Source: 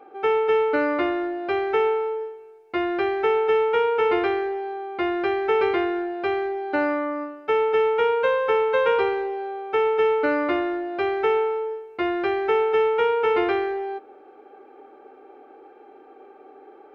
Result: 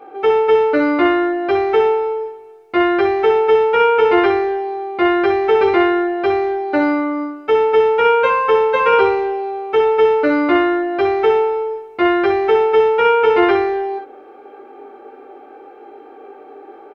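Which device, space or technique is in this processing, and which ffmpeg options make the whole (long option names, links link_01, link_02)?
slapback doubling: -filter_complex "[0:a]asplit=3[link_01][link_02][link_03];[link_02]adelay=20,volume=-3dB[link_04];[link_03]adelay=62,volume=-6dB[link_05];[link_01][link_04][link_05]amix=inputs=3:normalize=0,volume=6dB"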